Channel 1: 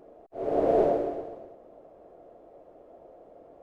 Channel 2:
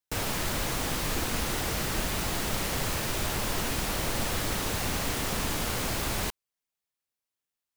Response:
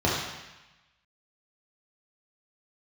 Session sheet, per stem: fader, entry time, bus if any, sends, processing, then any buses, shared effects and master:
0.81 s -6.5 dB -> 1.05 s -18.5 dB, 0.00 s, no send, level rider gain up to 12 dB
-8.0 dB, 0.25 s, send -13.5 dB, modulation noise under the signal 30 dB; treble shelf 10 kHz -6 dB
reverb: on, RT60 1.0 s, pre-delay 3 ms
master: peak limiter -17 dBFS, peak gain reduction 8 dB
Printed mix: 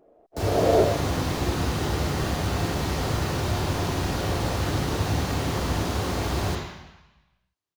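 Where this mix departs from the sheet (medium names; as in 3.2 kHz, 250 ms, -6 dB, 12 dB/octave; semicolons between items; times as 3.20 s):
stem 2: send -13.5 dB -> -5.5 dB; master: missing peak limiter -17 dBFS, peak gain reduction 8 dB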